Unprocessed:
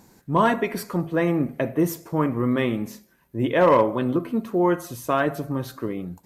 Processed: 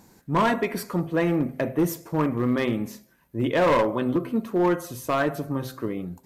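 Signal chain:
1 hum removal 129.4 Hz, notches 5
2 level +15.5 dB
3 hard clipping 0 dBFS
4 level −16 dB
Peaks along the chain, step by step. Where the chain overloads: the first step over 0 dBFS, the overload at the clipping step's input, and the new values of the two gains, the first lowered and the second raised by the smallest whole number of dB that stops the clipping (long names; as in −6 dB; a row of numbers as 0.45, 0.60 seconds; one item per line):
−7.5, +8.0, 0.0, −16.0 dBFS
step 2, 8.0 dB
step 2 +7.5 dB, step 4 −8 dB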